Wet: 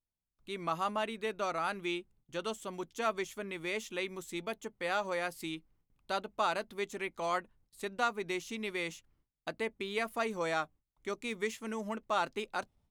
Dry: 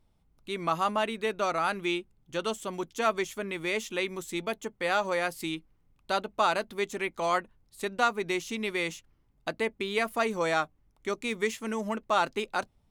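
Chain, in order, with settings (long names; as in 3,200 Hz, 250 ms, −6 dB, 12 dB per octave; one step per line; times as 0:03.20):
noise gate with hold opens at −56 dBFS
level −6 dB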